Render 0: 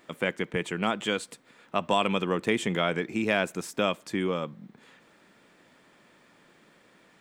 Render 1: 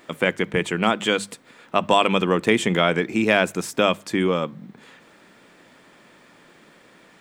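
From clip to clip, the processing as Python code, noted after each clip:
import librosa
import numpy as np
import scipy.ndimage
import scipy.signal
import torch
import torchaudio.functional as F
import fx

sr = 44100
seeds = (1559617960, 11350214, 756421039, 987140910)

y = fx.hum_notches(x, sr, base_hz=50, count=4)
y = F.gain(torch.from_numpy(y), 7.5).numpy()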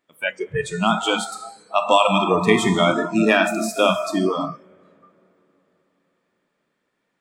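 y = fx.rev_plate(x, sr, seeds[0], rt60_s=4.2, hf_ratio=0.45, predelay_ms=0, drr_db=2.0)
y = fx.noise_reduce_blind(y, sr, reduce_db=26)
y = F.gain(torch.from_numpy(y), 1.5).numpy()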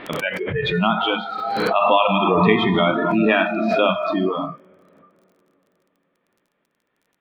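y = scipy.signal.sosfilt(scipy.signal.butter(6, 3500.0, 'lowpass', fs=sr, output='sos'), x)
y = fx.dmg_crackle(y, sr, seeds[1], per_s=27.0, level_db=-48.0)
y = fx.pre_swell(y, sr, db_per_s=27.0)
y = F.gain(torch.from_numpy(y), -1.0).numpy()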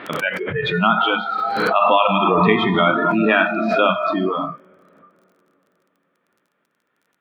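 y = scipy.signal.sosfilt(scipy.signal.butter(2, 95.0, 'highpass', fs=sr, output='sos'), x)
y = fx.peak_eq(y, sr, hz=1400.0, db=7.0, octaves=0.47)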